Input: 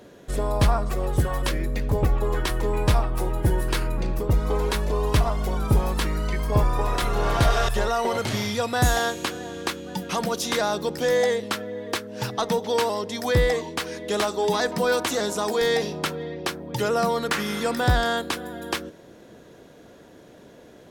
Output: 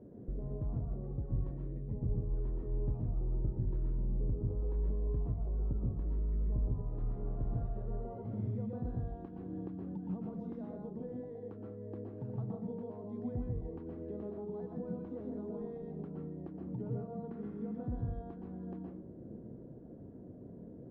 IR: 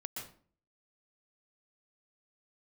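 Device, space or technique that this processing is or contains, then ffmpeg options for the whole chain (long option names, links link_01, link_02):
television next door: -filter_complex "[0:a]acompressor=threshold=-35dB:ratio=6,lowpass=300[link_01];[1:a]atrim=start_sample=2205[link_02];[link_01][link_02]afir=irnorm=-1:irlink=0,volume=3.5dB"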